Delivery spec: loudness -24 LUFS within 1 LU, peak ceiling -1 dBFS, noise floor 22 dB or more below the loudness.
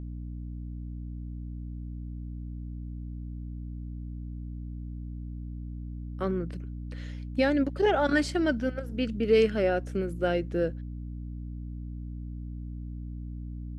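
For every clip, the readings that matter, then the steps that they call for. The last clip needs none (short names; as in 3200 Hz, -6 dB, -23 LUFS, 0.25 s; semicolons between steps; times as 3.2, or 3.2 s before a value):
hum 60 Hz; harmonics up to 300 Hz; hum level -35 dBFS; loudness -32.0 LUFS; peak -11.0 dBFS; loudness target -24.0 LUFS
-> de-hum 60 Hz, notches 5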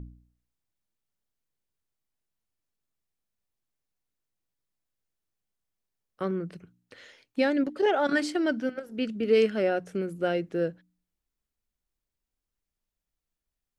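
hum none; loudness -27.5 LUFS; peak -11.5 dBFS; loudness target -24.0 LUFS
-> gain +3.5 dB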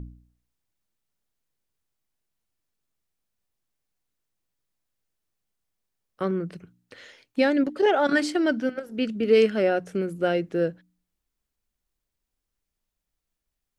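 loudness -24.0 LUFS; peak -8.0 dBFS; noise floor -84 dBFS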